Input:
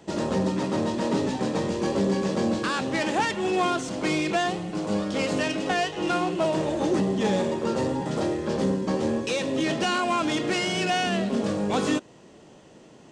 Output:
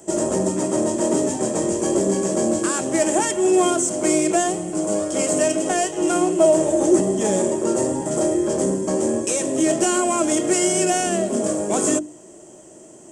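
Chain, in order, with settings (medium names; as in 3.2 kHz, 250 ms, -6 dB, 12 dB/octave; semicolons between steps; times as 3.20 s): resonant high shelf 5.6 kHz +13.5 dB, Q 3; hum notches 50/100/150/200/250/300/350 Hz; small resonant body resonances 350/620/3200 Hz, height 13 dB, ringing for 55 ms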